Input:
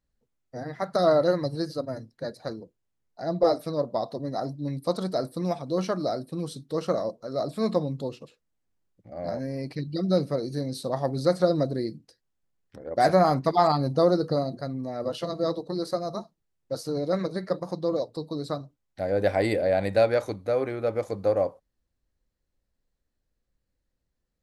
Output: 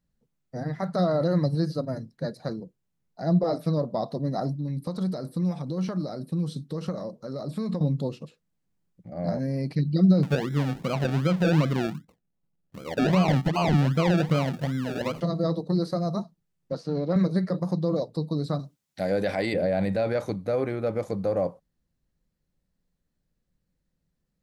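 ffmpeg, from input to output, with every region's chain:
-filter_complex "[0:a]asettb=1/sr,asplit=3[a][b][c];[a]atrim=end=4.594[d];[b]atrim=start=4.59:end=7.81,asetpts=PTS-STARTPTS,afade=t=in:d=0.004:c=qsin,afade=t=out:st=3.216:d=0.004:c=qsin,bandreject=f=680:w=9.9,acompressor=threshold=-32dB:ratio=4:attack=3.2:release=140:knee=1:detection=peak[e];[c]atrim=start=7.806[f];[d][e]acrossfade=d=0.004:c1=hsin:c2=qsin[g];[g][f]acrossfade=d=0.004:c1=qsin:c2=hsin,asettb=1/sr,asplit=3[h][i][j];[h]atrim=end=10.234[k];[i]atrim=start=10.23:end=15.21,asetpts=PTS-STARTPTS,afade=t=in:d=0.004:c=qsin,afade=t=out:st=4.976:d=0.004:c=qsin,lowpass=2.8k,acrusher=samples=34:mix=1:aa=0.000001:lfo=1:lforange=20.4:lforate=2.6[l];[j]atrim=start=15.206[m];[k][l]acrossfade=d=0.004:c1=hsin:c2=qsin[n];[n][m]acrossfade=d=0.004:c1=qsin:c2=hsin,asettb=1/sr,asplit=3[o][p][q];[o]atrim=end=16.724[r];[p]atrim=start=16.72:end=17.16,asetpts=PTS-STARTPTS,afade=t=in:d=0.004:c=qsin,afade=t=out:st=0.436:d=0.004:c=qsin,aeval=exprs='if(lt(val(0),0),0.708*val(0),val(0))':c=same,highpass=150,lowpass=3.9k[s];[q]atrim=start=17.156[t];[r][s]acrossfade=d=0.004:c1=hsin:c2=qsin[u];[u][t]acrossfade=d=0.004:c1=qsin:c2=hsin,asettb=1/sr,asplit=3[v][w][x];[v]atrim=end=18.594[y];[w]atrim=start=18.59:end=19.54,asetpts=PTS-STARTPTS,afade=t=in:d=0.004:c=qsin,afade=t=out:st=0.946:d=0.004:c=qsin,highpass=f=150:p=1,highshelf=f=2.2k:g=11[z];[x]atrim=start=19.536[aa];[y][z]acrossfade=d=0.004:c1=hsin:c2=qsin[ab];[ab][aa]acrossfade=d=0.004:c1=qsin:c2=hsin,acrossover=split=5200[ac][ad];[ad]acompressor=threshold=-51dB:ratio=4:attack=1:release=60[ae];[ac][ae]amix=inputs=2:normalize=0,alimiter=limit=-18.5dB:level=0:latency=1:release=21,equalizer=f=170:t=o:w=0.73:g=12.5"

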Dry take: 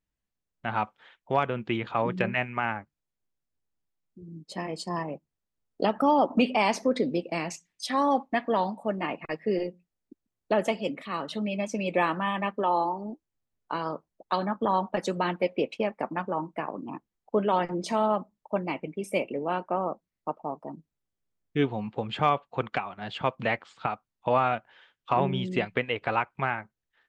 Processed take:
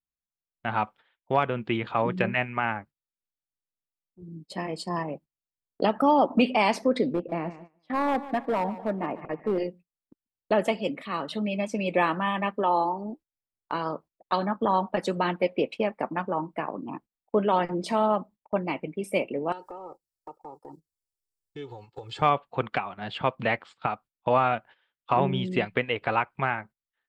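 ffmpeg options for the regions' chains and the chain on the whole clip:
-filter_complex "[0:a]asettb=1/sr,asplit=3[a][b][c];[a]atrim=end=7.134[d];[b]atrim=start=7.13:end=9.58,asetpts=PTS-STARTPTS,afade=t=in:d=0.004:c=qsin,afade=t=out:st=2.446:d=0.004:c=qsin,lowpass=1.3k,asoftclip=type=hard:threshold=-22dB,aecho=1:1:146|292|438|584:0.168|0.0755|0.034|0.0153,atrim=end_sample=108045[e];[c]atrim=start=9.576[f];[d][e]acrossfade=d=0.004:c1=hsin:c2=qsin[g];[g][f]acrossfade=d=0.004:c1=qsin:c2=hsin,asettb=1/sr,asplit=3[h][i][j];[h]atrim=end=19.524[k];[i]atrim=start=19.52:end=22.22,asetpts=PTS-STARTPTS,afade=t=in:d=0.004:c=qsin,afade=t=out:st=2.696:d=0.004:c=qsin,acompressor=threshold=-42dB:ratio=4:attack=3.2:release=140:knee=1:detection=peak,highshelf=f=3.8k:t=q:w=1.5:g=13.5,aecho=1:1:2.3:0.89,atrim=end_sample=119070[l];[j]atrim=start=22.216[m];[k][l]acrossfade=d=0.004:c1=hsin:c2=qsin[n];[n][m]acrossfade=d=0.004:c1=qsin:c2=hsin,agate=range=-16dB:threshold=-47dB:ratio=16:detection=peak,equalizer=f=6.3k:w=3.8:g=-7.5,volume=1.5dB"

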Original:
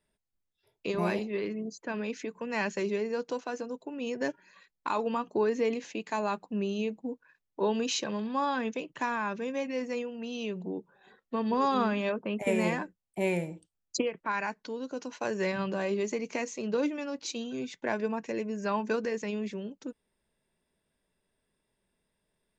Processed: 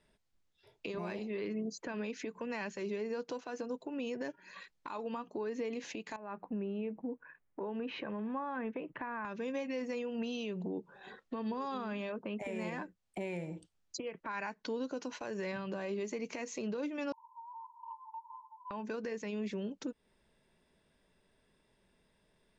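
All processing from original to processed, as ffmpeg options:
-filter_complex "[0:a]asettb=1/sr,asplit=3[a][b][c];[a]atrim=end=6.164[d];[b]atrim=start=6.16:end=9.25,asetpts=PTS-STARTPTS,afade=t=in:d=0.004:c=qsin,afade=t=out:st=3.086:d=0.004:c=qsin,lowpass=f=2.2k:w=0.5412,lowpass=f=2.2k:w=1.3066,acompressor=threshold=-49dB:ratio=2:attack=3.2:release=140:knee=1:detection=peak[e];[c]atrim=start=9.246[f];[d][e]acrossfade=d=0.004:c1=hsin:c2=qsin[g];[g][f]acrossfade=d=0.004:c1=qsin:c2=hsin,asettb=1/sr,asplit=3[h][i][j];[h]atrim=end=17.124[k];[i]atrim=start=17.12:end=18.71,asetpts=PTS-STARTPTS,afade=t=in:d=0.004:c=qsin,afade=t=out:st=1.586:d=0.004:c=qsin,aeval=exprs='val(0)+0.5*0.015*sgn(val(0))':c=same,asuperpass=centerf=960:order=20:qfactor=6.3,acompressor=threshold=-51dB:ratio=5:attack=3.2:release=140:knee=1:detection=peak[l];[j]atrim=start=18.706[m];[k][l]acrossfade=d=0.004:c1=hsin:c2=qsin[n];[n][m]acrossfade=d=0.004:c1=qsin:c2=hsin,lowpass=6.7k,acompressor=threshold=-42dB:ratio=2.5,alimiter=level_in=13dB:limit=-24dB:level=0:latency=1:release=246,volume=-13dB,volume=7.5dB"

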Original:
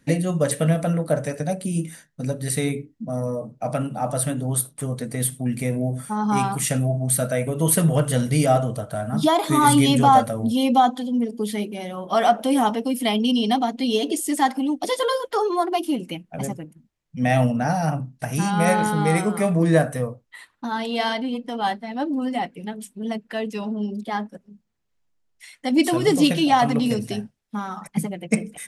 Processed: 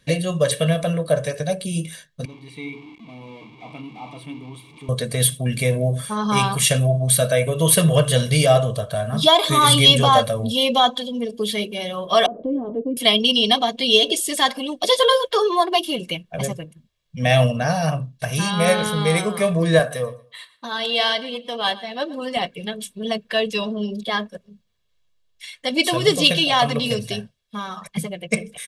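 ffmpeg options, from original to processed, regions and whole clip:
-filter_complex "[0:a]asettb=1/sr,asplit=3[a][b][c];[a]atrim=end=2.254[d];[b]atrim=start=2.25:end=4.89,asetpts=PTS-STARTPTS,afade=t=in:d=0.004:c=qsin,afade=t=out:st=2.636:d=0.004:c=qsin,aeval=exprs='val(0)+0.5*0.0422*sgn(val(0))':c=same,asplit=3[e][f][g];[e]bandpass=f=300:t=q:w=8,volume=0dB[h];[f]bandpass=f=870:t=q:w=8,volume=-6dB[i];[g]bandpass=f=2.24k:t=q:w=8,volume=-9dB[j];[h][i][j]amix=inputs=3:normalize=0[k];[c]atrim=start=4.886[l];[d][k]acrossfade=d=0.004:c1=hsin:c2=qsin[m];[m][l]acrossfade=d=0.004:c1=qsin:c2=hsin,asettb=1/sr,asplit=3[n][o][p];[n]atrim=end=12.264[q];[o]atrim=start=12.26:end=12.97,asetpts=PTS-STARTPTS,afade=t=in:d=0.004:c=qsin,afade=t=out:st=0.706:d=0.004:c=qsin,acompressor=threshold=-18dB:ratio=6:attack=3.2:release=140:knee=1:detection=peak,lowpass=f=320:t=q:w=2.8,equalizer=f=210:w=5.9:g=-10[r];[p]atrim=start=12.966[s];[q][r]acrossfade=d=0.004:c1=hsin:c2=qsin[t];[t][s]acrossfade=d=0.004:c1=qsin:c2=hsin,asettb=1/sr,asplit=3[u][v][w];[u]atrim=end=19.794[x];[v]atrim=start=19.79:end=22.37,asetpts=PTS-STARTPTS,afade=t=in:d=0.004:c=qsin,afade=t=out:st=2.576:d=0.004:c=qsin,highpass=f=220:p=1,aecho=1:1:118|236:0.112|0.0213,atrim=end_sample=113778[y];[w]atrim=start=22.366[z];[x][y]acrossfade=d=0.004:c1=hsin:c2=qsin[aa];[aa][z]acrossfade=d=0.004:c1=qsin:c2=hsin,equalizer=f=3.5k:t=o:w=0.88:g=11.5,aecho=1:1:1.8:0.65,dynaudnorm=f=690:g=7:m=11.5dB,volume=-1dB"

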